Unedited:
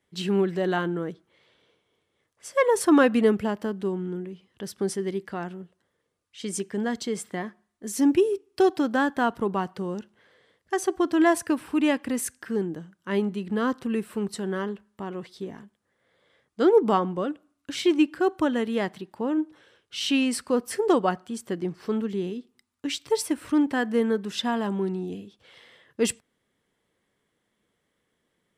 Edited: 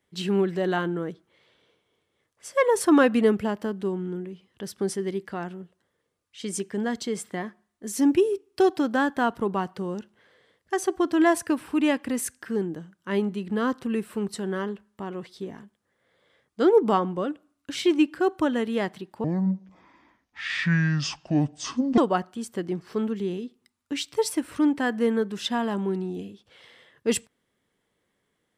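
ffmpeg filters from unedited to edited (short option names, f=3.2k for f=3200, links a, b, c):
-filter_complex "[0:a]asplit=3[a][b][c];[a]atrim=end=19.244[d];[b]atrim=start=19.24:end=20.91,asetpts=PTS-STARTPTS,asetrate=26901,aresample=44100[e];[c]atrim=start=20.906[f];[d][e]acrossfade=d=0.004:c1=hsin:c2=hsin[g];[g][f]acrossfade=d=0.004:c1=hsin:c2=hsin"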